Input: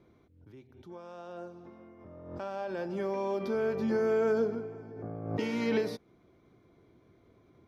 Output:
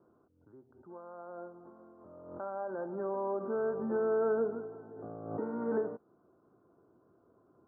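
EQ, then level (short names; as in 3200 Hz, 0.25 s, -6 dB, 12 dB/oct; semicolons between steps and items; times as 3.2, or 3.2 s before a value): HPF 360 Hz 6 dB/oct; steep low-pass 1500 Hz 72 dB/oct; 0.0 dB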